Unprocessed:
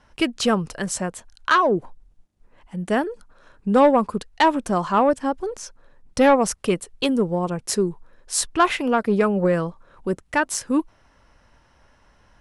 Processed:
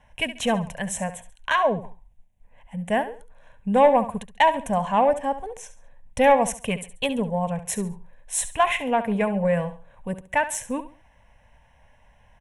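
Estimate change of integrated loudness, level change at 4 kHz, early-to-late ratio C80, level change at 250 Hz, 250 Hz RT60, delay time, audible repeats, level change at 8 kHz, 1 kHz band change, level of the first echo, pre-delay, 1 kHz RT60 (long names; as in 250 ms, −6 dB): −2.0 dB, −3.0 dB, no reverb audible, −5.5 dB, no reverb audible, 69 ms, 3, −2.5 dB, −0.5 dB, −13.0 dB, no reverb audible, no reverb audible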